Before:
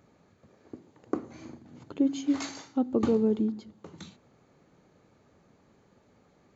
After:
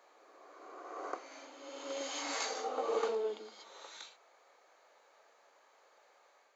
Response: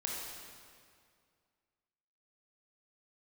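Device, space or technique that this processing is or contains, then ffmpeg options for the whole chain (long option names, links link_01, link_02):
ghost voice: -filter_complex "[0:a]areverse[link_01];[1:a]atrim=start_sample=2205[link_02];[link_01][link_02]afir=irnorm=-1:irlink=0,areverse,highpass=frequency=590:width=0.5412,highpass=frequency=590:width=1.3066,volume=1dB"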